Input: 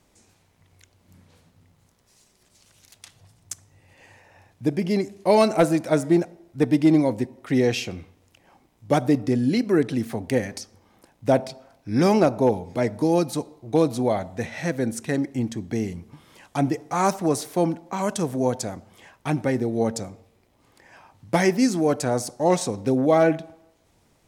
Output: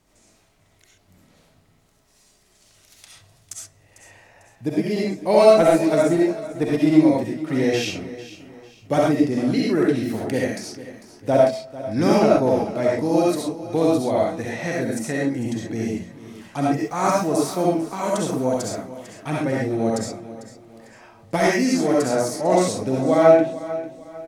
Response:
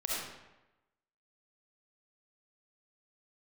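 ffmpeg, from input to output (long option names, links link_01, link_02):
-filter_complex "[0:a]asettb=1/sr,asplit=3[link_01][link_02][link_03];[link_01]atrim=end=16.714[link_04];[link_02]atrim=start=16.71:end=18.73,asetpts=PTS-STARTPTS,afade=type=in:duration=0.004:curve=qsin,afade=type=out:start_time=2.016:duration=0.004:curve=qsin,aeval=exprs='val(0)*gte(abs(val(0)),0.00447)':channel_layout=same[link_05];[link_03]atrim=start=18.726[link_06];[link_04][link_05]acrossfade=duration=0.004:curve1=hsin:curve2=qsin[link_07];[link_07][link_06]acrossfade=duration=0.004:curve1=qsin:curve2=hsin,aecho=1:1:448|896|1344:0.168|0.0604|0.0218[link_08];[1:a]atrim=start_sample=2205,atrim=end_sample=6174[link_09];[link_08][link_09]afir=irnorm=-1:irlink=0,volume=-1.5dB"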